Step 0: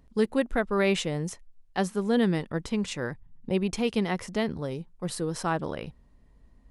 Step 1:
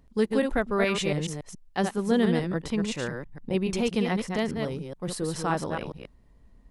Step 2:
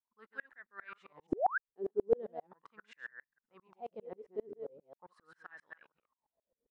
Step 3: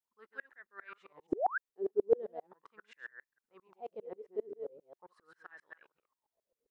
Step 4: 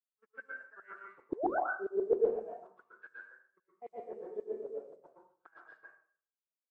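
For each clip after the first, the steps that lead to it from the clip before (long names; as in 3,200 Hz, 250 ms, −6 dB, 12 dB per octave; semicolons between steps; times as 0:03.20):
delay that plays each chunk backwards 141 ms, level −5 dB
LFO wah 0.4 Hz 400–1,800 Hz, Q 11; sound drawn into the spectrogram rise, 0:01.32–0:01.58, 310–1,700 Hz −26 dBFS; tremolo with a ramp in dB swelling 7.5 Hz, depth 34 dB; level +4.5 dB
drawn EQ curve 240 Hz 0 dB, 380 Hz +8 dB, 700 Hz +4 dB; level −5 dB
hearing-aid frequency compression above 1,400 Hz 1.5 to 1; noise gate −54 dBFS, range −31 dB; dense smooth reverb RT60 0.52 s, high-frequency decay 0.85×, pre-delay 105 ms, DRR −3.5 dB; level −3.5 dB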